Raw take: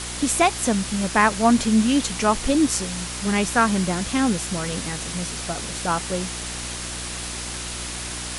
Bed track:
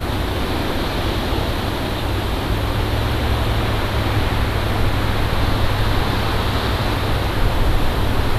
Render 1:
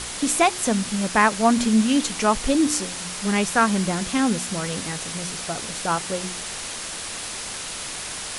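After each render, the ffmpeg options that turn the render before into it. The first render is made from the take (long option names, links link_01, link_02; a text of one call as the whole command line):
ffmpeg -i in.wav -af "bandreject=frequency=60:width_type=h:width=4,bandreject=frequency=120:width_type=h:width=4,bandreject=frequency=180:width_type=h:width=4,bandreject=frequency=240:width_type=h:width=4,bandreject=frequency=300:width_type=h:width=4,bandreject=frequency=360:width_type=h:width=4" out.wav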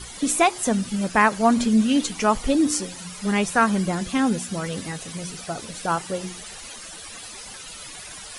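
ffmpeg -i in.wav -af "afftdn=noise_reduction=14:noise_floor=-33" out.wav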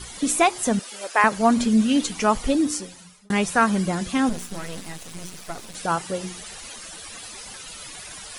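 ffmpeg -i in.wav -filter_complex "[0:a]asettb=1/sr,asplit=3[link_01][link_02][link_03];[link_01]atrim=end=0.794[link_04];[link_02]atrim=start=0.79:end=1.24,asetpts=PTS-STARTPTS,afade=type=in:duration=0.004:curve=qsin,afade=type=out:start_time=0.446:duration=0.004:curve=qsin,highpass=frequency=450:width=0.5412,highpass=frequency=450:width=1.3066[link_05];[link_03]atrim=start=1.236[link_06];[link_04][link_05]acrossfade=duration=0.004:curve1=hsin:curve2=qsin[link_07];[link_07][link_06]acrossfade=duration=0.004:curve1=qsin:curve2=hsin,asettb=1/sr,asplit=3[link_08][link_09][link_10];[link_08]atrim=end=4.294[link_11];[link_09]atrim=start=4.29:end=5.75,asetpts=PTS-STARTPTS,afade=type=in:duration=0.004:curve=qsin,afade=type=out:start_time=1.456:duration=0.004:curve=qsin,aeval=exprs='max(val(0),0)':channel_layout=same[link_12];[link_10]atrim=start=5.746[link_13];[link_11][link_12]acrossfade=duration=0.004:curve1=hsin:curve2=qsin[link_14];[link_14][link_13]acrossfade=duration=0.004:curve1=qsin:curve2=hsin,asplit=2[link_15][link_16];[link_15]atrim=end=3.3,asetpts=PTS-STARTPTS,afade=type=out:start_time=2.47:duration=0.83[link_17];[link_16]atrim=start=3.3,asetpts=PTS-STARTPTS,afade=type=in:duration=0.004:curve=hsin[link_18];[link_17][link_18]concat=n=2:v=0:a=1" out.wav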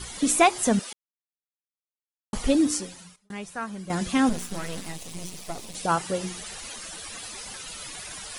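ffmpeg -i in.wav -filter_complex "[0:a]asettb=1/sr,asplit=3[link_01][link_02][link_03];[link_01]atrim=end=4.914[link_04];[link_02]atrim=start=4.91:end=5.89,asetpts=PTS-STARTPTS,afade=type=in:duration=0.004:curve=qsin,afade=type=out:start_time=0.976:duration=0.004:curve=qsin,equalizer=frequency=1500:width=2.2:gain=-9[link_05];[link_03]atrim=start=5.886[link_06];[link_04][link_05]acrossfade=duration=0.004:curve1=hsin:curve2=qsin[link_07];[link_07][link_06]acrossfade=duration=0.004:curve1=qsin:curve2=hsin,asplit=5[link_08][link_09][link_10][link_11][link_12];[link_08]atrim=end=0.93,asetpts=PTS-STARTPTS,afade=type=out:start_time=0.926:duration=0.004:curve=hsin[link_13];[link_09]atrim=start=0.93:end=2.33,asetpts=PTS-STARTPTS,volume=0[link_14];[link_10]atrim=start=2.33:end=3.16,asetpts=PTS-STARTPTS,afade=type=in:duration=0.004:curve=hsin,afade=type=out:start_time=0.51:duration=0.32:curve=log:silence=0.188365[link_15];[link_11]atrim=start=3.16:end=3.9,asetpts=PTS-STARTPTS,volume=-14.5dB[link_16];[link_12]atrim=start=3.9,asetpts=PTS-STARTPTS,afade=type=in:duration=0.32:curve=log:silence=0.188365[link_17];[link_13][link_14][link_15][link_16][link_17]concat=n=5:v=0:a=1" out.wav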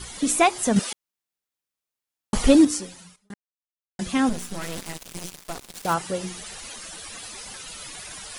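ffmpeg -i in.wav -filter_complex "[0:a]asettb=1/sr,asplit=3[link_01][link_02][link_03];[link_01]atrim=end=0.764[link_04];[link_02]atrim=start=0.76:end=2.65,asetpts=PTS-STARTPTS,afade=type=in:duration=0.004:curve=qsin,afade=type=out:start_time=1.886:duration=0.004:curve=qsin,acontrast=83[link_05];[link_03]atrim=start=2.646[link_06];[link_04][link_05]acrossfade=duration=0.004:curve1=hsin:curve2=qsin[link_07];[link_07][link_06]acrossfade=duration=0.004:curve1=qsin:curve2=hsin,asettb=1/sr,asplit=3[link_08][link_09][link_10];[link_08]atrim=end=4.614[link_11];[link_09]atrim=start=4.61:end=5.94,asetpts=PTS-STARTPTS,afade=type=in:duration=0.004:curve=qsin,afade=type=out:start_time=1.326:duration=0.004:curve=qsin,acrusher=bits=4:mix=0:aa=0.5[link_12];[link_10]atrim=start=5.936[link_13];[link_11][link_12]acrossfade=duration=0.004:curve1=hsin:curve2=qsin[link_14];[link_14][link_13]acrossfade=duration=0.004:curve1=qsin:curve2=hsin,asplit=3[link_15][link_16][link_17];[link_15]atrim=end=3.34,asetpts=PTS-STARTPTS,afade=type=out:start_time=3.336:duration=0.004:curve=hsin[link_18];[link_16]atrim=start=3.34:end=3.99,asetpts=PTS-STARTPTS,volume=0[link_19];[link_17]atrim=start=3.99,asetpts=PTS-STARTPTS,afade=type=in:duration=0.004:curve=hsin[link_20];[link_18][link_19][link_20]concat=n=3:v=0:a=1" out.wav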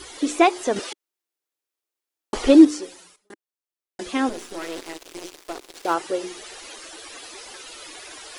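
ffmpeg -i in.wav -filter_complex "[0:a]acrossover=split=6300[link_01][link_02];[link_02]acompressor=threshold=-46dB:ratio=4:attack=1:release=60[link_03];[link_01][link_03]amix=inputs=2:normalize=0,lowshelf=frequency=250:width_type=q:width=3:gain=-10" out.wav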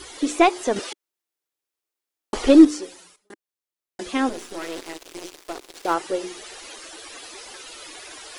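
ffmpeg -i in.wav -af "aeval=exprs='0.841*(cos(1*acos(clip(val(0)/0.841,-1,1)))-cos(1*PI/2))+0.0188*(cos(6*acos(clip(val(0)/0.841,-1,1)))-cos(6*PI/2))':channel_layout=same" out.wav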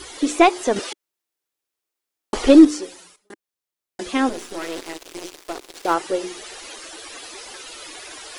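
ffmpeg -i in.wav -af "volume=2.5dB,alimiter=limit=-1dB:level=0:latency=1" out.wav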